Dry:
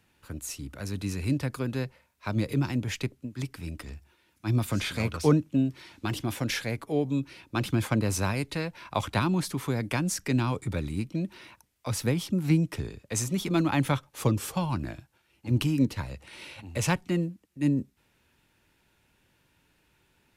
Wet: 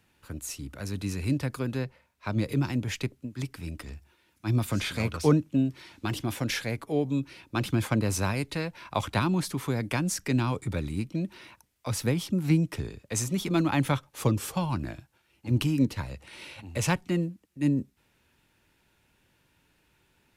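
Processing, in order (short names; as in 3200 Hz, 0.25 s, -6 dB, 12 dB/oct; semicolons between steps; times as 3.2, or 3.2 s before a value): 1.76–2.41 high shelf 4500 Hz -> 7800 Hz -6 dB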